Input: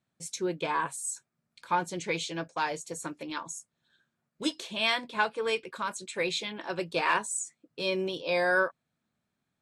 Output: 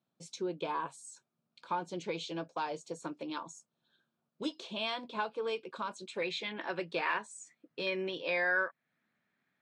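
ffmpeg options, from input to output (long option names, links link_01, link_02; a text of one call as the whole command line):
ffmpeg -i in.wav -af "asetnsamples=nb_out_samples=441:pad=0,asendcmd='6.22 equalizer g 3.5;7.87 equalizer g 11.5',equalizer=frequency=1900:width_type=o:width=0.67:gain=-11,acompressor=threshold=-35dB:ratio=2,highpass=170,lowpass=4100" out.wav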